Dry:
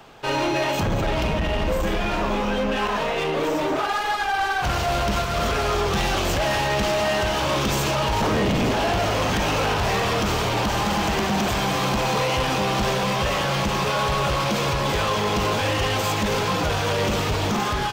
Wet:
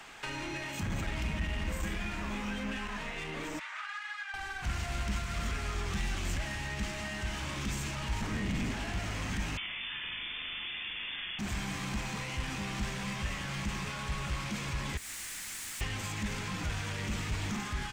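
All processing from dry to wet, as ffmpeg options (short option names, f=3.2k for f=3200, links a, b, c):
-filter_complex "[0:a]asettb=1/sr,asplit=3[a][b][c];[a]atrim=end=0.654[d];[b]atrim=start=0.65:end=2.77,asetpts=PTS-STARTPTS,afade=t=in:d=0.004:c=qsin,afade=t=out:st=2.116:d=0.004:c=qsin,highpass=43,highshelf=f=11k:g=5.5[e];[c]atrim=start=2.766[f];[d][e]acrossfade=d=0.004:c1=hsin:c2=qsin[g];[g][f]acrossfade=d=0.004:c1=qsin:c2=hsin,asettb=1/sr,asplit=3[h][i][j];[h]atrim=end=3.594[k];[i]atrim=start=3.59:end=4.34,asetpts=PTS-STARTPTS,afade=t=in:d=0.004:c=qsin,afade=t=out:st=0.746:d=0.004:c=qsin,highpass=f=1.2k:w=0.5412,highpass=f=1.2k:w=1.3066,aemphasis=mode=reproduction:type=75fm[l];[j]atrim=start=4.336[m];[k][l]acrossfade=d=0.004:c1=hsin:c2=qsin[n];[n][m]acrossfade=d=0.004:c1=qsin:c2=hsin,asettb=1/sr,asplit=3[o][p][q];[o]atrim=end=9.574[r];[p]atrim=start=9.57:end=11.39,asetpts=PTS-STARTPTS,afade=t=in:d=0.004:c=qsin,afade=t=out:st=1.816:d=0.004:c=qsin,lowpass=f=3.1k:t=q:w=0.5098,lowpass=f=3.1k:t=q:w=0.6013,lowpass=f=3.1k:t=q:w=0.9,lowpass=f=3.1k:t=q:w=2.563,afreqshift=-3600,asplit=2[s][t];[t]adelay=41,volume=-3.5dB[u];[s][u]amix=inputs=2:normalize=0,atrim=end_sample=80262[v];[q]atrim=start=11.386[w];[r][v]acrossfade=d=0.004:c1=hsin:c2=qsin[x];[x][w]acrossfade=d=0.004:c1=qsin:c2=hsin,asettb=1/sr,asplit=3[y][z][aa];[y]atrim=end=14.974[ab];[z]atrim=start=14.97:end=15.81,asetpts=PTS-STARTPTS,afade=t=in:d=0.004:c=qsin,afade=t=out:st=0.836:d=0.004:c=qsin,equalizer=f=2k:t=o:w=0.56:g=-9.5,bandreject=f=211:t=h:w=4,bandreject=f=422:t=h:w=4,bandreject=f=633:t=h:w=4,bandreject=f=844:t=h:w=4,bandreject=f=1.055k:t=h:w=4,bandreject=f=1.266k:t=h:w=4,bandreject=f=1.477k:t=h:w=4,bandreject=f=1.688k:t=h:w=4,bandreject=f=1.899k:t=h:w=4,aeval=exprs='(mod(29.9*val(0)+1,2)-1)/29.9':c=same[ac];[aa]atrim=start=15.806[ad];[ab][ac]acrossfade=d=0.004:c1=hsin:c2=qsin[ae];[ae][ad]acrossfade=d=0.004:c1=qsin:c2=hsin,equalizer=f=125:t=o:w=1:g=-7,equalizer=f=500:t=o:w=1:g=-7,equalizer=f=2k:t=o:w=1:g=10,equalizer=f=8k:t=o:w=1:g=11,acrossover=split=250[af][ag];[ag]acompressor=threshold=-34dB:ratio=6[ah];[af][ah]amix=inputs=2:normalize=0,volume=-5dB"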